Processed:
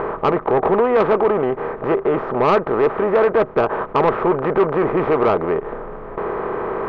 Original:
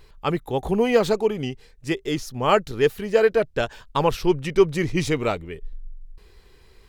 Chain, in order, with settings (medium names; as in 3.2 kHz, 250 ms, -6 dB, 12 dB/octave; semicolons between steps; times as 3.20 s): spectral levelling over time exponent 0.4; low-pass 1.3 kHz 24 dB/octave; tilt EQ +3.5 dB/octave; in parallel at +1 dB: compression, threshold -32 dBFS, peak gain reduction 19 dB; on the sum: saturation -11.5 dBFS, distortion -15 dB; trim +3.5 dB